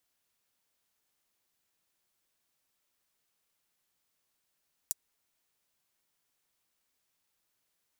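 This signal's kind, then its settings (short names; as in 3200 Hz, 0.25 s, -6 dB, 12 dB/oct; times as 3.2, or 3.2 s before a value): closed hi-hat, high-pass 7000 Hz, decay 0.03 s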